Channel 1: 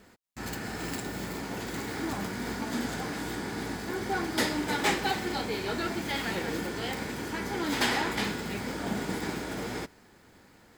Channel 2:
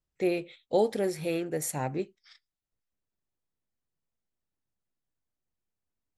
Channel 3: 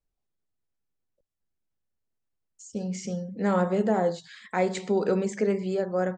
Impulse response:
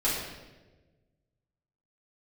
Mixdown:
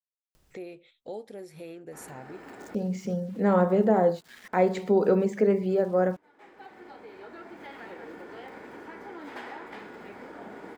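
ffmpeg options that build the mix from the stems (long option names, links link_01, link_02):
-filter_complex "[0:a]acrossover=split=270 2400:gain=0.2 1 0.158[link_01][link_02][link_03];[link_01][link_02][link_03]amix=inputs=3:normalize=0,adelay=1550,volume=-13dB[link_04];[1:a]adelay=350,volume=-17dB[link_05];[2:a]aemphasis=mode=reproduction:type=75kf,aeval=exprs='val(0)*gte(abs(val(0)),0.00282)':channel_layout=same,volume=0.5dB,asplit=2[link_06][link_07];[link_07]apad=whole_len=543544[link_08];[link_04][link_08]sidechaincompress=threshold=-44dB:ratio=6:attack=16:release=1220[link_09];[link_09][link_05][link_06]amix=inputs=3:normalize=0,equalizer=frequency=510:width=0.54:gain=3,acompressor=mode=upward:threshold=-36dB:ratio=2.5"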